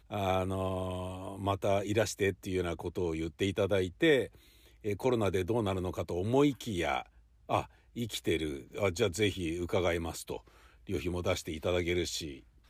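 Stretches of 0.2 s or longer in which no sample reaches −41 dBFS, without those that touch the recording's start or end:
0:04.27–0:04.85
0:07.02–0:07.49
0:07.65–0:07.96
0:10.37–0:10.89

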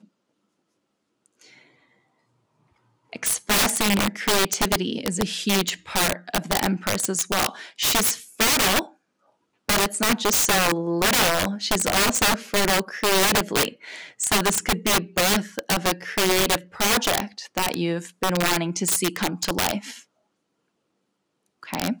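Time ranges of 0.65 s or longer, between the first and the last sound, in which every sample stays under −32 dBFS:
0:08.85–0:09.69
0:19.98–0:21.63

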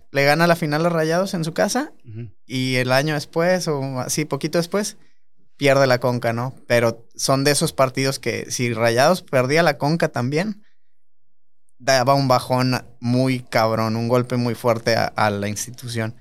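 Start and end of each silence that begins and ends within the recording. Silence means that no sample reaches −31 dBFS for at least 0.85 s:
0:10.53–0:11.88

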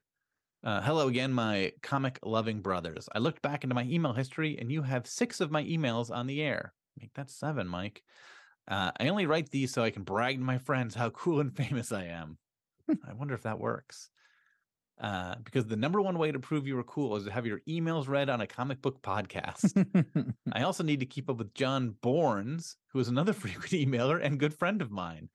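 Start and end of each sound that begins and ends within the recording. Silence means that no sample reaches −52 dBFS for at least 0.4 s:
0:00.63–0:12.35
0:12.88–0:14.25

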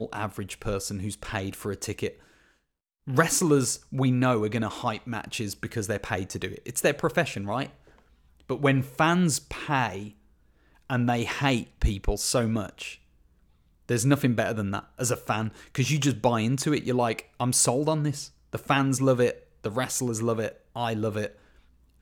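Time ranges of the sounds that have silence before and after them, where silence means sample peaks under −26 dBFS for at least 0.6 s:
0:03.08–0:07.66
0:08.50–0:09.95
0:10.90–0:12.87
0:13.89–0:21.26

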